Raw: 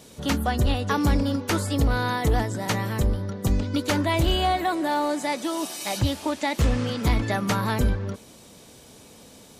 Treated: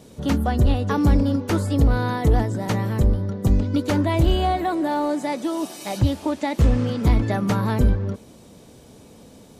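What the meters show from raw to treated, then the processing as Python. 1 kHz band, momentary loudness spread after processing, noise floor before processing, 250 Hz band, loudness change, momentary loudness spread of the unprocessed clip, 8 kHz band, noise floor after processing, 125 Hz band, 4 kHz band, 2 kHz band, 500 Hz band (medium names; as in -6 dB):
0.0 dB, 6 LU, -49 dBFS, +4.0 dB, +3.0 dB, 5 LU, -5.0 dB, -47 dBFS, +5.0 dB, -4.5 dB, -3.0 dB, +2.5 dB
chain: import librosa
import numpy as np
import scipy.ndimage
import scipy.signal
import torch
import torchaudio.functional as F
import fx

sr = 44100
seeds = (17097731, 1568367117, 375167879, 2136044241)

y = fx.tilt_shelf(x, sr, db=5.0, hz=880.0)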